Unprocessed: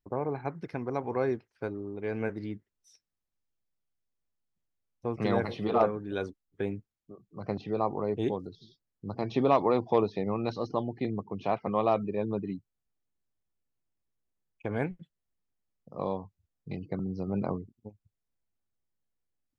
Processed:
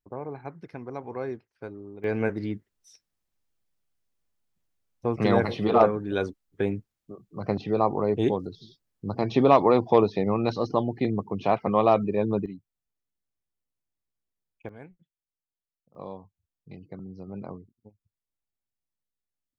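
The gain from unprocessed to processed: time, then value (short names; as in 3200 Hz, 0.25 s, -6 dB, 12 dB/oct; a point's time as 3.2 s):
-4 dB
from 2.04 s +6 dB
from 12.46 s -4 dB
from 14.69 s -15 dB
from 15.95 s -7 dB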